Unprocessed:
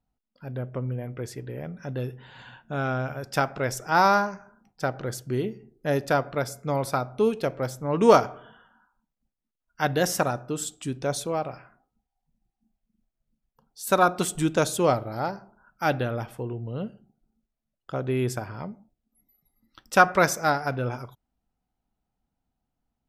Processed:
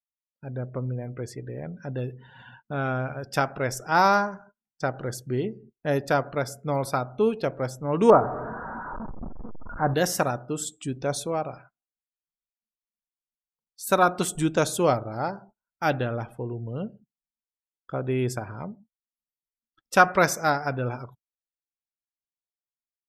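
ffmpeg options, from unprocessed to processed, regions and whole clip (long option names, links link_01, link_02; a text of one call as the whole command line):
ffmpeg -i in.wav -filter_complex "[0:a]asettb=1/sr,asplit=3[link_01][link_02][link_03];[link_01]atrim=end=8.104[link_04];[link_02]atrim=start=8.1:end=9.94,asetpts=PTS-STARTPTS,afade=type=in:duration=0.004:curve=qsin,afade=type=out:start_time=1.836:duration=0.004:curve=qsin,aeval=exprs='val(0)+0.5*0.0473*sgn(val(0))':channel_layout=same,lowpass=frequency=1300:width=0.5412,lowpass=frequency=1300:width=1.3066,aemphasis=mode=production:type=50fm[link_05];[link_03]atrim=start=9.936[link_06];[link_04][link_05]acrossfade=duration=0.004:curve1=hsin:curve2=qsin[link_07];[link_07][link_06]acrossfade=duration=0.004:curve1=qsin:curve2=hsin,agate=range=-17dB:threshold=-50dB:ratio=16:detection=peak,afftdn=noise_reduction=19:noise_floor=-48" out.wav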